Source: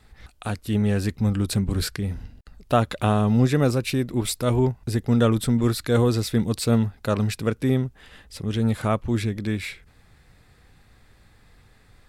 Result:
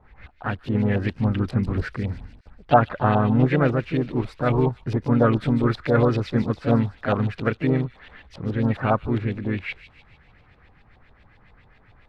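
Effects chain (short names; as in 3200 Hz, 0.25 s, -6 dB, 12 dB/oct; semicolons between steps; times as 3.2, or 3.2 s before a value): LFO low-pass saw up 7.3 Hz 690–3100 Hz; harmoniser +3 st -7 dB; thin delay 0.148 s, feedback 52%, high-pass 4100 Hz, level -6.5 dB; gain -1 dB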